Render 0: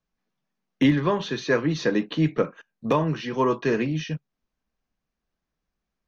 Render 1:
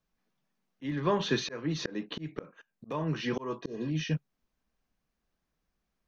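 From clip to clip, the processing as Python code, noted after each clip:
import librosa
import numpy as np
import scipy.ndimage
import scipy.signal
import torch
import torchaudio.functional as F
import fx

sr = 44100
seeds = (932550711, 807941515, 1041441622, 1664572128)

y = fx.spec_repair(x, sr, seeds[0], start_s=3.65, length_s=0.22, low_hz=810.0, high_hz=3500.0, source='before')
y = fx.auto_swell(y, sr, attack_ms=537.0)
y = y * librosa.db_to_amplitude(1.0)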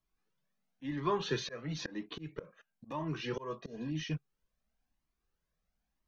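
y = fx.comb_cascade(x, sr, direction='rising', hz=0.99)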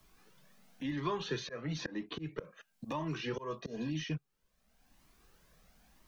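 y = fx.band_squash(x, sr, depth_pct=70)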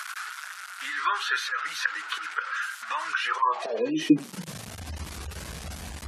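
y = fx.delta_mod(x, sr, bps=64000, step_db=-41.0)
y = fx.filter_sweep_highpass(y, sr, from_hz=1400.0, to_hz=75.0, start_s=3.26, end_s=4.86, q=7.6)
y = fx.spec_gate(y, sr, threshold_db=-30, keep='strong')
y = y * librosa.db_to_amplitude(9.0)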